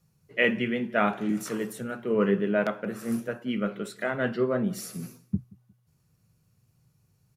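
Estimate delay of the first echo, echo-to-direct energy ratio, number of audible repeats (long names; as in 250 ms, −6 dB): 179 ms, −23.5 dB, 2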